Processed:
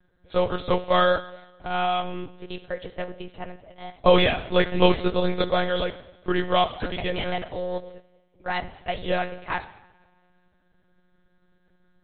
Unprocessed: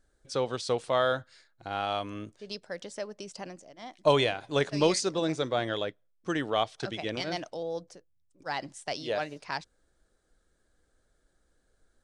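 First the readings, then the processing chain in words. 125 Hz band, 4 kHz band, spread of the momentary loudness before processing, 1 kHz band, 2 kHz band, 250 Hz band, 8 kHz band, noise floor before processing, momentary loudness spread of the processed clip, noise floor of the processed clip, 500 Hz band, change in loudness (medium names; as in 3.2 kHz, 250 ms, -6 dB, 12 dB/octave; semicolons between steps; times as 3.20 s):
+6.0 dB, +4.5 dB, 16 LU, +7.0 dB, +6.5 dB, +6.0 dB, under -40 dB, -72 dBFS, 17 LU, -65 dBFS, +5.5 dB, +6.0 dB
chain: in parallel at -7 dB: hysteresis with a dead band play -35.5 dBFS; on the sum: two-slope reverb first 0.81 s, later 2.4 s, from -19 dB, DRR 10 dB; monotone LPC vocoder at 8 kHz 180 Hz; trim +4 dB; MP3 32 kbps 32 kHz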